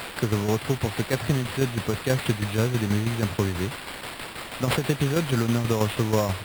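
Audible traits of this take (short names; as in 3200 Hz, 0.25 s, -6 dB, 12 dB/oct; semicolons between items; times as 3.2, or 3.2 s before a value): a quantiser's noise floor 6-bit, dither triangular; tremolo saw down 6.2 Hz, depth 60%; aliases and images of a low sample rate 6200 Hz, jitter 0%; Vorbis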